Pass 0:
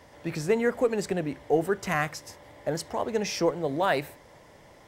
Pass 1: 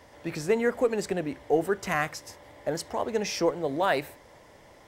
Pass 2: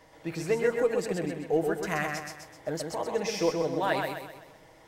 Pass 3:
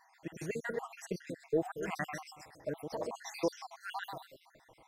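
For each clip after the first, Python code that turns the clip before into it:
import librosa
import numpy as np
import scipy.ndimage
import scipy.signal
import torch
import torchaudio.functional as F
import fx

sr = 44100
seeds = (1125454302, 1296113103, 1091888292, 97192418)

y1 = fx.peak_eq(x, sr, hz=150.0, db=-4.0, octaves=0.77)
y2 = y1 + 0.47 * np.pad(y1, (int(6.3 * sr / 1000.0), 0))[:len(y1)]
y2 = fx.echo_feedback(y2, sr, ms=128, feedback_pct=44, wet_db=-4.5)
y2 = y2 * librosa.db_to_amplitude(-4.0)
y3 = fx.spec_dropout(y2, sr, seeds[0], share_pct=63)
y3 = y3 * librosa.db_to_amplitude(-4.0)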